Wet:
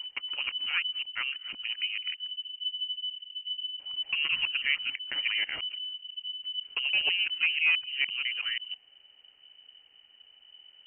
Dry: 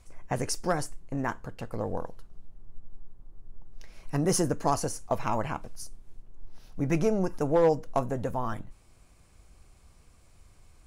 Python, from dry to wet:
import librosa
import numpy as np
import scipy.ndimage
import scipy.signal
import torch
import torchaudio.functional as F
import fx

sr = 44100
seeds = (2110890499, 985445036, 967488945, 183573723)

y = fx.local_reverse(x, sr, ms=165.0)
y = fx.freq_invert(y, sr, carrier_hz=3000)
y = y * 10.0 ** (-3.0 / 20.0)